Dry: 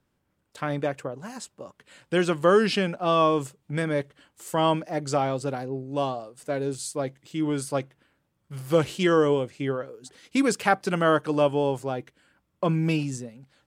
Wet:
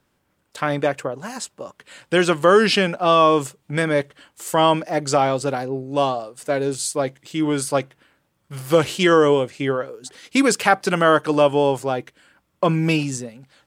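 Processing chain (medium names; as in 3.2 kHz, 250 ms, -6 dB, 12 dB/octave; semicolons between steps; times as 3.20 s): bass shelf 350 Hz -6.5 dB; in parallel at -1 dB: peak limiter -15.5 dBFS, peak gain reduction 8 dB; on the sum: trim +3.5 dB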